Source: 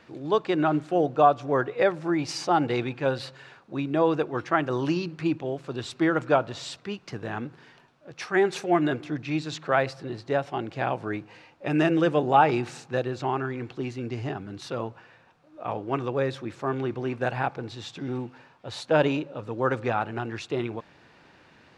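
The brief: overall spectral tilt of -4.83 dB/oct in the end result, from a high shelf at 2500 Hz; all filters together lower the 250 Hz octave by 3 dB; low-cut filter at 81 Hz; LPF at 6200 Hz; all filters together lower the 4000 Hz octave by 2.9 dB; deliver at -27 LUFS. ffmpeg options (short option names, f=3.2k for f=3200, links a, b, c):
-af "highpass=81,lowpass=6.2k,equalizer=f=250:t=o:g=-4.5,highshelf=f=2.5k:g=5.5,equalizer=f=4k:t=o:g=-8,volume=1dB"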